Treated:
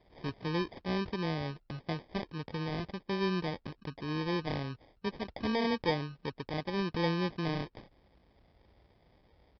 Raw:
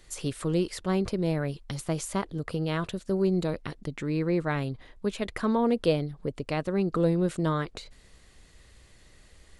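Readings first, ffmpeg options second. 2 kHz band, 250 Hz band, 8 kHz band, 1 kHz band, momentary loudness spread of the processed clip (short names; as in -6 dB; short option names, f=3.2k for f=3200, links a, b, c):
-1.5 dB, -7.0 dB, under -20 dB, -3.0 dB, 10 LU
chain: -af "highpass=50,aresample=11025,acrusher=samples=8:mix=1:aa=0.000001,aresample=44100,volume=-6.5dB"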